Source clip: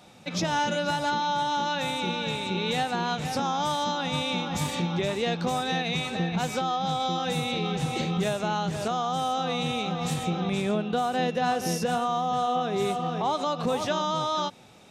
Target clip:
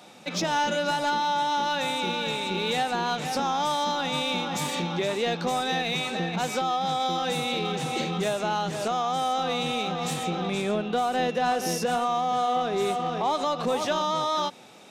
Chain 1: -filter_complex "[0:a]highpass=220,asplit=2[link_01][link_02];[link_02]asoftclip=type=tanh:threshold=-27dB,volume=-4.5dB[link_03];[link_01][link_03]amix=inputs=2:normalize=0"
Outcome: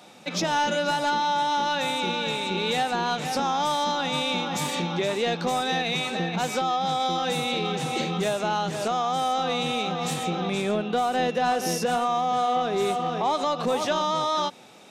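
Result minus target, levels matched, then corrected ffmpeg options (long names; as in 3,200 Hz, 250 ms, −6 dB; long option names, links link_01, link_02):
soft clipping: distortion −5 dB
-filter_complex "[0:a]highpass=220,asplit=2[link_01][link_02];[link_02]asoftclip=type=tanh:threshold=-35dB,volume=-4.5dB[link_03];[link_01][link_03]amix=inputs=2:normalize=0"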